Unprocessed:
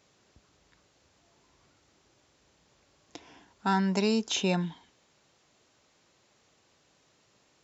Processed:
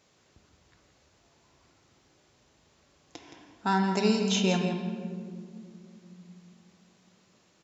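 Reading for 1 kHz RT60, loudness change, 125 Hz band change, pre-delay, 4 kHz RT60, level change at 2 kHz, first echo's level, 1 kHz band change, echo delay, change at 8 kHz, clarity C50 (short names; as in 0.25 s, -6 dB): 1.8 s, +0.5 dB, +2.0 dB, 4 ms, 1.2 s, +1.5 dB, -9.5 dB, +2.0 dB, 0.17 s, n/a, 5.0 dB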